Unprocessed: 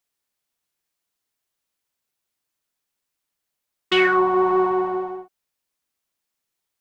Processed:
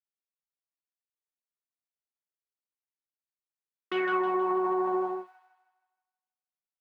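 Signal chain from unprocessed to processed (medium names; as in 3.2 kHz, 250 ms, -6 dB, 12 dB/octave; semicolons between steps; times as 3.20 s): companding laws mixed up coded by A; peak limiter -19.5 dBFS, peak gain reduction 12 dB; three-band isolator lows -22 dB, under 180 Hz, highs -14 dB, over 2.1 kHz; on a send: feedback echo behind a high-pass 158 ms, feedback 46%, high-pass 2.1 kHz, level -6 dB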